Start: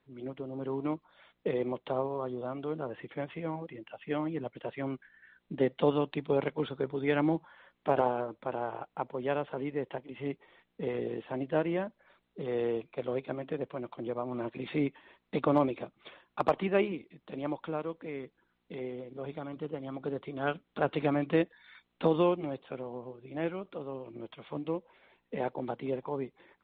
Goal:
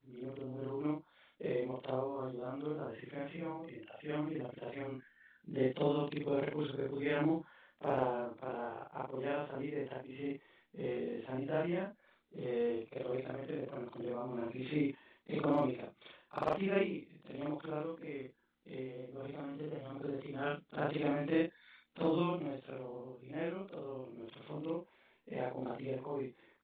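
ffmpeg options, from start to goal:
-af "afftfilt=real='re':imag='-im':win_size=4096:overlap=0.75,equalizer=f=830:t=o:w=1.6:g=-3.5,volume=1.12"

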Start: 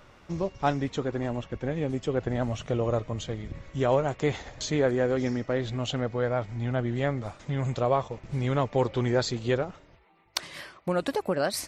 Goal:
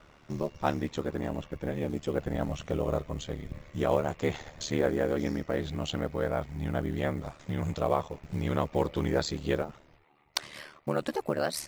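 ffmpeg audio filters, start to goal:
-af "acrusher=bits=8:mode=log:mix=0:aa=0.000001,aeval=exprs='val(0)*sin(2*PI*37*n/s)':c=same"

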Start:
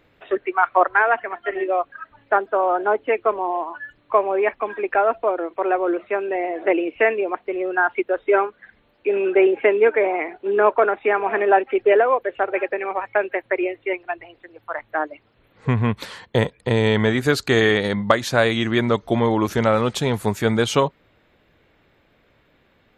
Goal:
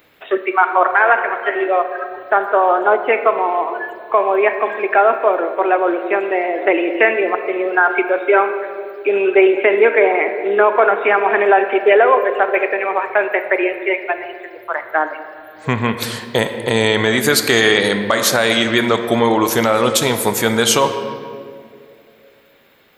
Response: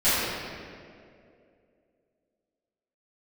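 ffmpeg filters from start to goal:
-filter_complex "[0:a]aemphasis=mode=production:type=bsi,asplit=2[s0][s1];[1:a]atrim=start_sample=2205[s2];[s1][s2]afir=irnorm=-1:irlink=0,volume=0.0531[s3];[s0][s3]amix=inputs=2:normalize=0,alimiter=level_in=2.24:limit=0.891:release=50:level=0:latency=1,volume=0.891"

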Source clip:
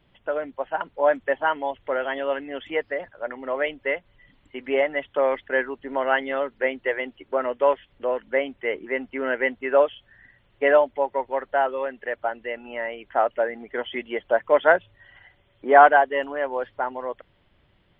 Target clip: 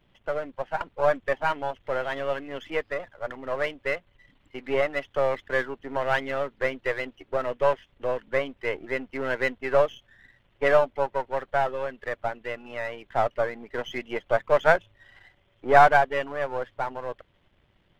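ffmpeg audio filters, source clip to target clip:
-af "aeval=exprs='if(lt(val(0),0),0.447*val(0),val(0))':c=same"

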